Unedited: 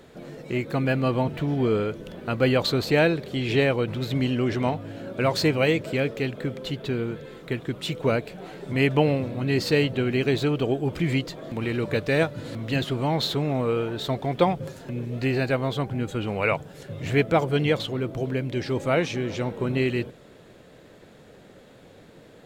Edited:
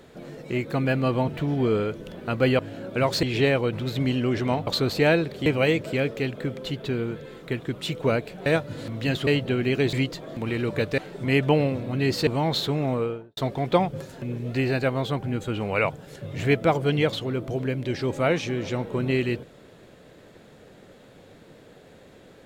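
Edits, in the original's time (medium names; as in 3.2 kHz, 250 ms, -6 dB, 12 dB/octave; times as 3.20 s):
2.59–3.38 s: swap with 4.82–5.46 s
8.46–9.75 s: swap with 12.13–12.94 s
10.41–11.08 s: delete
13.57–14.04 s: studio fade out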